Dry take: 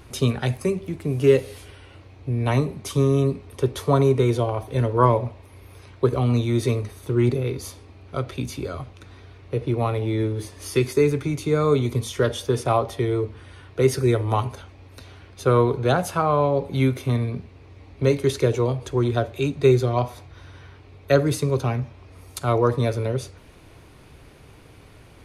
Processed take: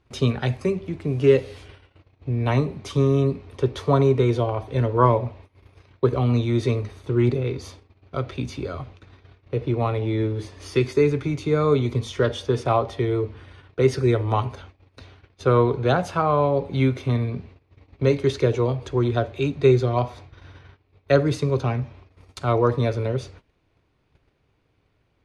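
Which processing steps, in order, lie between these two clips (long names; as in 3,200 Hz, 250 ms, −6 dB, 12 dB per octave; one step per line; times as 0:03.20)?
low-pass filter 5,100 Hz 12 dB per octave
noise gate −43 dBFS, range −19 dB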